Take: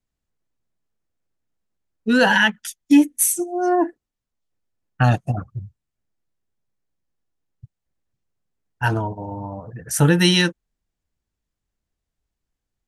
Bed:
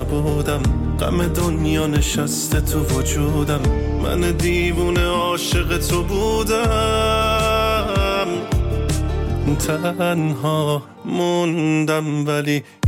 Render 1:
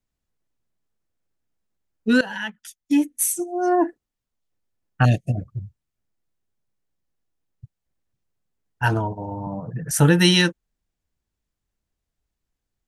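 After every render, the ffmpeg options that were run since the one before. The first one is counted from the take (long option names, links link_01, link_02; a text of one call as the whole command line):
ffmpeg -i in.wav -filter_complex "[0:a]asettb=1/sr,asplit=3[link_01][link_02][link_03];[link_01]atrim=end=5.054[link_04];[link_02]atrim=start=5.05:end=5.48,asetpts=PTS-STARTPTS,afade=type=in:duration=0.004:curve=qsin,afade=type=out:start_time=0.426:duration=0.004:curve=qsin,asuperstop=centerf=1100:order=8:qfactor=0.88[link_05];[link_03]atrim=start=5.476[link_06];[link_04][link_05]acrossfade=duration=0.004:curve1=hsin:curve2=qsin[link_07];[link_07][link_06]acrossfade=duration=0.004:curve1=qsin:curve2=hsin,asettb=1/sr,asplit=3[link_08][link_09][link_10];[link_08]atrim=end=9.464[link_11];[link_09]atrim=start=9.46:end=9.91,asetpts=PTS-STARTPTS,afade=type=in:duration=0.004:curve=qsin,afade=type=out:start_time=0.446:duration=0.004:curve=qsin,highpass=frequency=150:width_type=q:width=4.9[link_12];[link_10]atrim=start=9.906[link_13];[link_11][link_12]acrossfade=duration=0.004:curve1=hsin:curve2=qsin[link_14];[link_14][link_13]acrossfade=duration=0.004:curve1=qsin:curve2=hsin,asplit=2[link_15][link_16];[link_15]atrim=end=2.21,asetpts=PTS-STARTPTS,afade=type=out:start_time=2.206:duration=0.004:curve=hsin:silence=0.1[link_17];[link_16]atrim=start=2.21,asetpts=PTS-STARTPTS,afade=type=in:duration=1.66:silence=0.1[link_18];[link_17][link_18]concat=n=2:v=0:a=1" out.wav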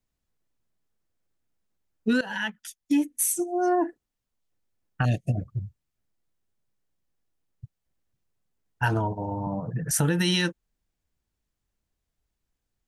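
ffmpeg -i in.wav -af "alimiter=limit=-10.5dB:level=0:latency=1:release=118,acompressor=threshold=-22dB:ratio=2" out.wav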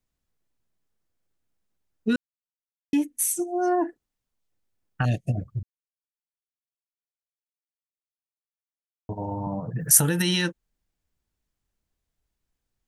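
ffmpeg -i in.wav -filter_complex "[0:a]asettb=1/sr,asplit=3[link_01][link_02][link_03];[link_01]atrim=end=9.804[link_04];[link_02]atrim=start=9.8:end=10.22,asetpts=PTS-STARTPTS,afade=type=in:duration=0.004:curve=qsin,afade=type=out:start_time=0.416:duration=0.004:curve=qsin,aemphasis=mode=production:type=50fm[link_05];[link_03]atrim=start=10.216[link_06];[link_04][link_05]acrossfade=duration=0.004:curve1=hsin:curve2=qsin[link_07];[link_07][link_06]acrossfade=duration=0.004:curve1=qsin:curve2=hsin,asplit=5[link_08][link_09][link_10][link_11][link_12];[link_08]atrim=end=2.16,asetpts=PTS-STARTPTS,afade=type=out:start_time=2.156:duration=0.004:curve=hsin[link_13];[link_09]atrim=start=2.16:end=2.93,asetpts=PTS-STARTPTS,volume=0[link_14];[link_10]atrim=start=2.93:end=5.63,asetpts=PTS-STARTPTS,afade=type=in:duration=0.004:curve=hsin,afade=type=out:start_time=2.696:duration=0.004:curve=hsin[link_15];[link_11]atrim=start=5.63:end=9.09,asetpts=PTS-STARTPTS,volume=0[link_16];[link_12]atrim=start=9.09,asetpts=PTS-STARTPTS,afade=type=in:duration=0.004:curve=hsin[link_17];[link_13][link_14][link_15][link_16][link_17]concat=n=5:v=0:a=1" out.wav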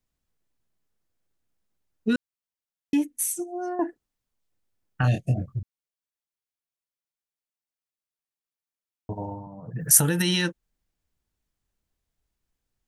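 ffmpeg -i in.wav -filter_complex "[0:a]asettb=1/sr,asplit=3[link_01][link_02][link_03];[link_01]atrim=end=5.014[link_04];[link_02]atrim=start=5.01:end=5.54,asetpts=PTS-STARTPTS,afade=type=in:duration=0.004:curve=qsin,afade=type=out:start_time=0.526:duration=0.004:curve=qsin,asplit=2[link_05][link_06];[link_06]adelay=23,volume=-4dB[link_07];[link_05][link_07]amix=inputs=2:normalize=0,atrim=end_sample=23373[link_08];[link_03]atrim=start=5.536[link_09];[link_04][link_08]acrossfade=duration=0.004:curve1=hsin:curve2=qsin[link_10];[link_10][link_09]acrossfade=duration=0.004:curve1=qsin:curve2=hsin,asplit=4[link_11][link_12][link_13][link_14];[link_11]atrim=end=3.79,asetpts=PTS-STARTPTS,afade=type=out:start_time=2.99:duration=0.8:silence=0.298538[link_15];[link_12]atrim=start=3.79:end=9.47,asetpts=PTS-STARTPTS,afade=type=in:duration=0.004:curve=hsin:silence=0.298538,afade=type=out:start_time=5.38:duration=0.3:silence=0.223872[link_16];[link_13]atrim=start=9.47:end=9.57,asetpts=PTS-STARTPTS,volume=-13dB[link_17];[link_14]atrim=start=9.57,asetpts=PTS-STARTPTS,afade=type=in:duration=0.3:silence=0.223872[link_18];[link_15][link_16][link_17][link_18]concat=n=4:v=0:a=1" out.wav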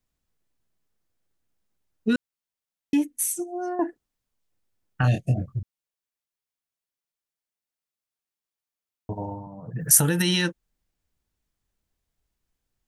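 ffmpeg -i in.wav -af "volume=1dB,alimiter=limit=-3dB:level=0:latency=1" out.wav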